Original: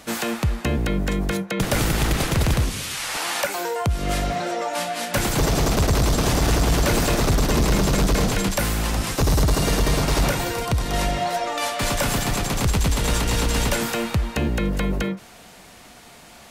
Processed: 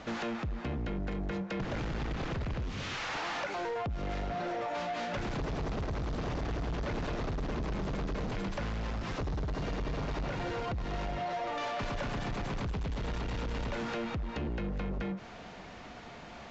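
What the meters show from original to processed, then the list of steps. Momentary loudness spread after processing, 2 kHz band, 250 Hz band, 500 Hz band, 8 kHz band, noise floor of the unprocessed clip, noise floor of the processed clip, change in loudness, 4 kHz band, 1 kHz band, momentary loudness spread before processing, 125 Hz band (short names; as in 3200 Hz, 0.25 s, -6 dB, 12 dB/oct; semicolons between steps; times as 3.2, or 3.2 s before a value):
2 LU, -13.0 dB, -12.5 dB, -12.0 dB, -27.5 dB, -46 dBFS, -47 dBFS, -14.0 dB, -17.0 dB, -11.5 dB, 5 LU, -14.0 dB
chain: CVSD 64 kbps; high shelf 4000 Hz -11 dB; compressor, threshold -28 dBFS, peak gain reduction 11.5 dB; soft clip -32 dBFS, distortion -11 dB; air absorption 81 m; downsampling 16000 Hz; gain +1 dB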